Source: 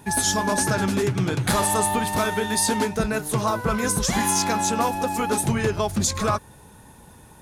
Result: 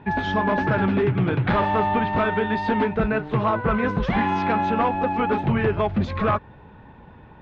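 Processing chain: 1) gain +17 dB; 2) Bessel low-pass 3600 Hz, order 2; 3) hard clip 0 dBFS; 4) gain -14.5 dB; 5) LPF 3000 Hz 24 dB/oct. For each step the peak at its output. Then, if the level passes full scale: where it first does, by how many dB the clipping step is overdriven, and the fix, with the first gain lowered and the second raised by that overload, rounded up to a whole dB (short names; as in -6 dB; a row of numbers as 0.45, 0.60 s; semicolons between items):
+6.5, +6.5, 0.0, -14.5, -13.5 dBFS; step 1, 6.5 dB; step 1 +10 dB, step 4 -7.5 dB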